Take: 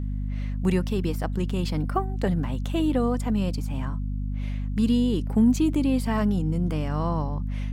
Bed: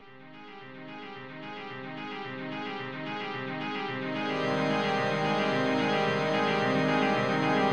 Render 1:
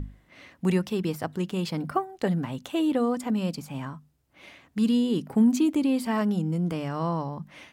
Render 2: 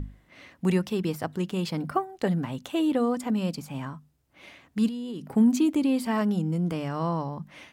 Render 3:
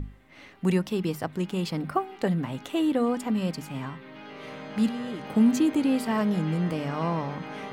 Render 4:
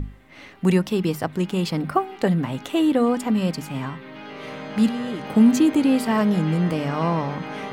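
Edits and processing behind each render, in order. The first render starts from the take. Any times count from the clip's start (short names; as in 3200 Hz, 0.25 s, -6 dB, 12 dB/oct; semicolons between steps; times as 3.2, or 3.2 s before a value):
notches 50/100/150/200/250 Hz
4.88–5.33 compressor 10:1, threshold -31 dBFS
add bed -12.5 dB
gain +5.5 dB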